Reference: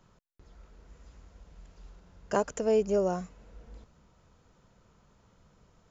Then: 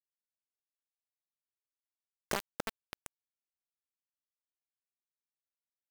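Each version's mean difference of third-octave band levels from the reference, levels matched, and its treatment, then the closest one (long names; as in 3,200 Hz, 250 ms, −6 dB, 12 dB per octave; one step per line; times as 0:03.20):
12.0 dB: downward compressor 6 to 1, threshold −43 dBFS, peak gain reduction 20 dB
bit reduction 6 bits
level +8.5 dB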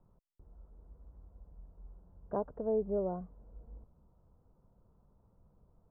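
4.5 dB: low-pass filter 1,000 Hz 24 dB per octave
low-shelf EQ 95 Hz +7.5 dB
level −7 dB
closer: second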